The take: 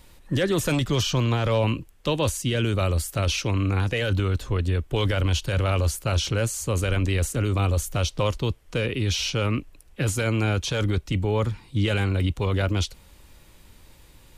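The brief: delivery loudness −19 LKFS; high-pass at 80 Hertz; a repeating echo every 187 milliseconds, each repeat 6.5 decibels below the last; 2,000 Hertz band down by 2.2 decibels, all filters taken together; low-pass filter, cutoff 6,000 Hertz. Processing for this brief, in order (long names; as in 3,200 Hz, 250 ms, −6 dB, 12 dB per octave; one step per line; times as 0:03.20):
high-pass filter 80 Hz
low-pass filter 6,000 Hz
parametric band 2,000 Hz −3 dB
repeating echo 187 ms, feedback 47%, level −6.5 dB
level +6 dB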